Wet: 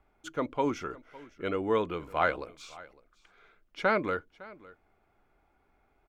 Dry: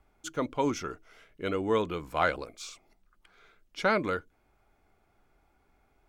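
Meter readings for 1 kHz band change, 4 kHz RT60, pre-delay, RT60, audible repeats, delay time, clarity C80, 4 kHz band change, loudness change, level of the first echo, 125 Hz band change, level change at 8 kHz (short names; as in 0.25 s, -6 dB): 0.0 dB, none, none, none, 1, 0.557 s, none, -4.0 dB, -0.5 dB, -21.0 dB, -2.5 dB, n/a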